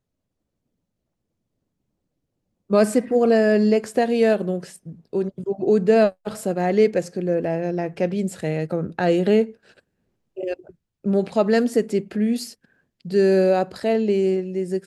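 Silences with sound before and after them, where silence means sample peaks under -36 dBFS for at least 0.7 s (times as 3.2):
9.51–10.37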